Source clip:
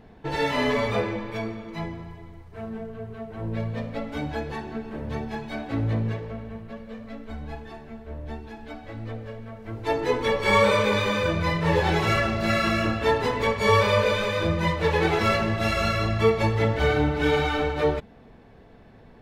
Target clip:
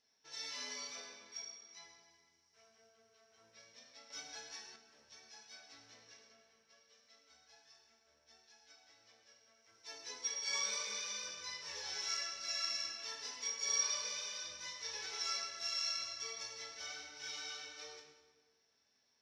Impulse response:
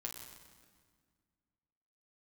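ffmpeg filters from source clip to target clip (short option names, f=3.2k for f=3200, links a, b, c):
-filter_complex "[0:a]bandpass=f=5.6k:t=q:w=18:csg=0[a];[1:a]atrim=start_sample=2205,asetrate=61740,aresample=44100[b];[a][b]afir=irnorm=-1:irlink=0,asettb=1/sr,asplit=3[c][d][e];[c]atrim=end=4.104[f];[d]atrim=start=4.1:end=4.76,asetpts=PTS-STARTPTS,afade=t=in:d=0.004:c=qsin,afade=t=out:st=0.656:d=0.004:c=qsin,acontrast=55[g];[e]atrim=start=4.756[h];[f][g]acrossfade=d=0.004:c1=hsin:c2=qsin[i];[i][h]acrossfade=d=0.004:c1=qsin:c2=hsin,volume=17dB"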